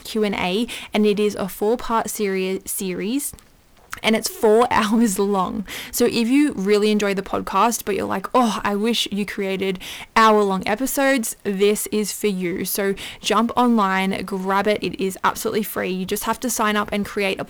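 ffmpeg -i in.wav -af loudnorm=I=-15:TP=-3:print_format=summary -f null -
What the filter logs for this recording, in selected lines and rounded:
Input Integrated:    -20.6 LUFS
Input True Peak:      -7.2 dBTP
Input LRA:             2.9 LU
Input Threshold:     -30.7 LUFS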